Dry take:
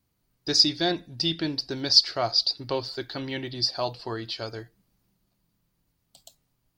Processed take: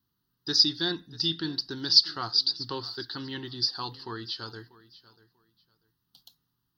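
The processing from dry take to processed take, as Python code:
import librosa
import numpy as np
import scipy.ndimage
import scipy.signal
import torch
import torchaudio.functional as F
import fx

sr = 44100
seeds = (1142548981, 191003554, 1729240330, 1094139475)

y = fx.highpass(x, sr, hz=160.0, slope=6)
y = fx.fixed_phaser(y, sr, hz=2300.0, stages=6)
y = fx.echo_feedback(y, sr, ms=641, feedback_pct=21, wet_db=-19.5)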